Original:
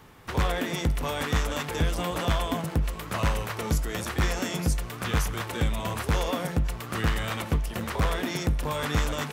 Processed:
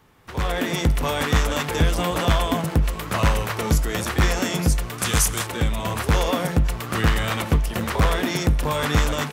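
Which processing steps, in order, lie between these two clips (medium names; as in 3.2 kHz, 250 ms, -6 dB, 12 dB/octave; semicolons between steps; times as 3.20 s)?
4.98–5.47 s: peaking EQ 8.6 kHz +14.5 dB 1.7 oct; level rider gain up to 14 dB; trim -5.5 dB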